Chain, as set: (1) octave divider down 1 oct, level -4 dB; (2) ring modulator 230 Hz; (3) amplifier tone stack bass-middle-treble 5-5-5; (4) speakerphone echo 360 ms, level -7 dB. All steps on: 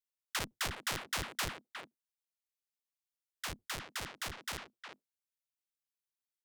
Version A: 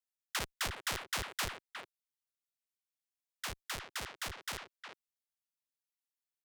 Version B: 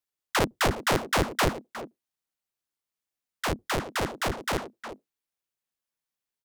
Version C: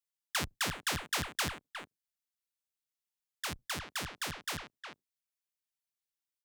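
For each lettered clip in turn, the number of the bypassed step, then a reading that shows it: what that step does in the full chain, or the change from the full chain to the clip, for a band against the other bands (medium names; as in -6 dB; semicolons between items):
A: 1, 250 Hz band -2.0 dB; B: 3, 8 kHz band -8.5 dB; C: 2, crest factor change -3.0 dB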